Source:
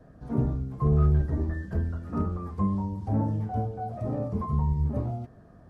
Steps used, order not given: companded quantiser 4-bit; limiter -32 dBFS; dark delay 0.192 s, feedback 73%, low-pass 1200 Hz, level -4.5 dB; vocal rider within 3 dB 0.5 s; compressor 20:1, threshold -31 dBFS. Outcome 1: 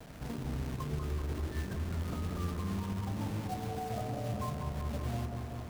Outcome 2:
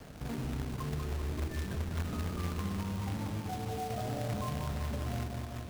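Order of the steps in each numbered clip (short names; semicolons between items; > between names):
compressor > companded quantiser > vocal rider > limiter > dark delay; vocal rider > limiter > compressor > dark delay > companded quantiser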